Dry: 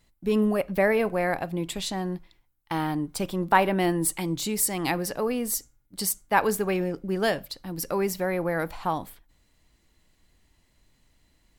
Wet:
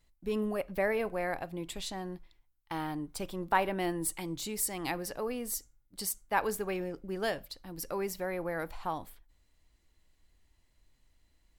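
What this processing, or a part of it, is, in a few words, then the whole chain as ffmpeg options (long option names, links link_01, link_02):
low shelf boost with a cut just above: -af "lowshelf=frequency=64:gain=7,equalizer=frequency=180:width_type=o:width=1.1:gain=-4.5,volume=-7.5dB"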